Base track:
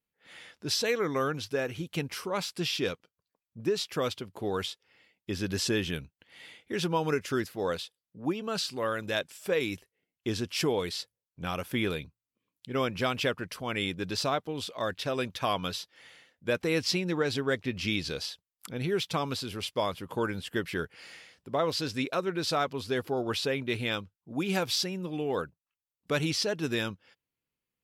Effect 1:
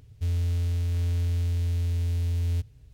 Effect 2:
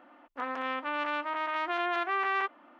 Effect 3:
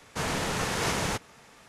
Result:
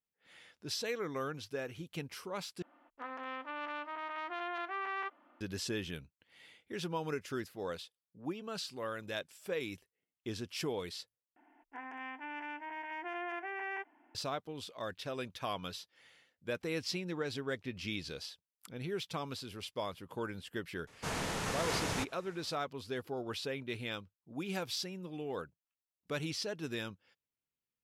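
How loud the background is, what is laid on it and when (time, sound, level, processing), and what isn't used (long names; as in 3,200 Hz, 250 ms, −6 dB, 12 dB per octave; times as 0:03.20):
base track −9 dB
0:02.62: overwrite with 2 −9 dB
0:11.36: overwrite with 2 −7 dB + phaser with its sweep stopped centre 820 Hz, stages 8
0:20.87: mix in 3 −7 dB
not used: 1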